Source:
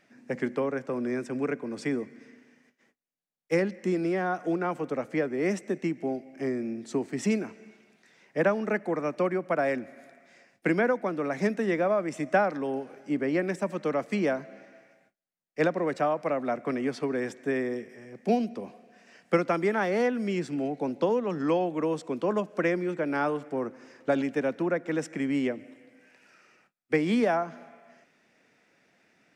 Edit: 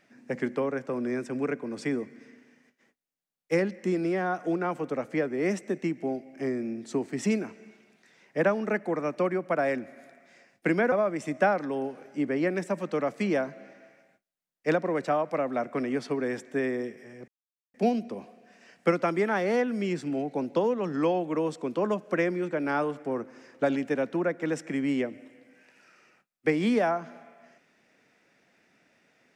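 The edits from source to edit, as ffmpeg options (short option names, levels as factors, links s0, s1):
-filter_complex "[0:a]asplit=3[s0][s1][s2];[s0]atrim=end=10.922[s3];[s1]atrim=start=11.838:end=18.2,asetpts=PTS-STARTPTS,afade=t=out:st=6.358:d=0.004:c=hsin,apad=pad_dur=0.46[s4];[s2]atrim=start=18.2,asetpts=PTS-STARTPTS,afade=t=in:d=0.004:c=hsin[s5];[s4][s5]concat=n=2:v=0:a=1[s6];[s3][s6]acrossfade=d=0.004:c1=hsin:c2=hsin"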